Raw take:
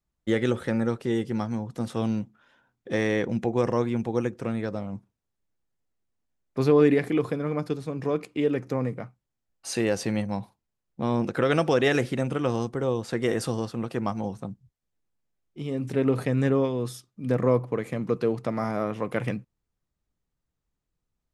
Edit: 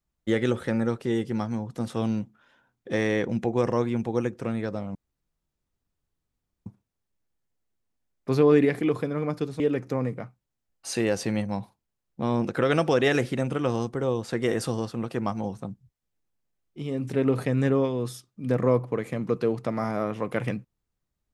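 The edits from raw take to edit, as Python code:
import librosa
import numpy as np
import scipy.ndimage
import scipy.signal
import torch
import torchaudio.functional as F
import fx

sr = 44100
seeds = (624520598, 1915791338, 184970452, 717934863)

y = fx.edit(x, sr, fx.insert_room_tone(at_s=4.95, length_s=1.71),
    fx.cut(start_s=7.89, length_s=0.51), tone=tone)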